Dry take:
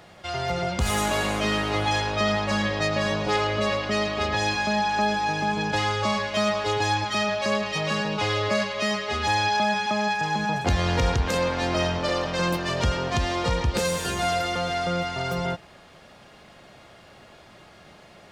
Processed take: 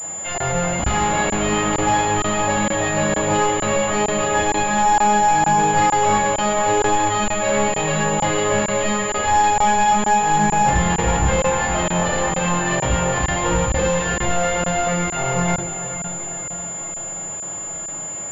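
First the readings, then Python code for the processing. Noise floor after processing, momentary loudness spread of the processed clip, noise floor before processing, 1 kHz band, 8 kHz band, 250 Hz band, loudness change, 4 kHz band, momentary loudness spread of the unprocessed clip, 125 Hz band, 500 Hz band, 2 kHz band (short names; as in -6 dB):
-29 dBFS, 10 LU, -50 dBFS, +9.0 dB, +16.0 dB, +5.5 dB, +6.0 dB, -0.5 dB, 3 LU, +4.5 dB, +5.5 dB, +4.0 dB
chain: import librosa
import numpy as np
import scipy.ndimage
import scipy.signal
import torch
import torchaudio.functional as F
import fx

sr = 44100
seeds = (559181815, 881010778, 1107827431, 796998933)

p1 = scipy.signal.sosfilt(scipy.signal.butter(2, 62.0, 'highpass', fs=sr, output='sos'), x)
p2 = fx.low_shelf(p1, sr, hz=120.0, db=-6.0)
p3 = 10.0 ** (-27.5 / 20.0) * np.tanh(p2 / 10.0 ** (-27.5 / 20.0))
p4 = p3 + fx.echo_diffused(p3, sr, ms=485, feedback_pct=56, wet_db=-11.0, dry=0)
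p5 = fx.room_shoebox(p4, sr, seeds[0], volume_m3=240.0, walls='furnished', distance_m=5.6)
p6 = fx.buffer_crackle(p5, sr, first_s=0.38, period_s=0.46, block=1024, kind='zero')
y = fx.pwm(p6, sr, carrier_hz=7100.0)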